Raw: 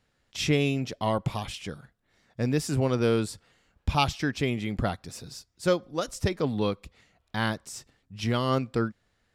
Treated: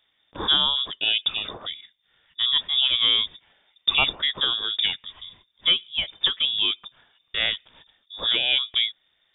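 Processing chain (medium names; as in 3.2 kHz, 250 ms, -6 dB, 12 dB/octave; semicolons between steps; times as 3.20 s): frequency inversion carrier 3.6 kHz; trim +3 dB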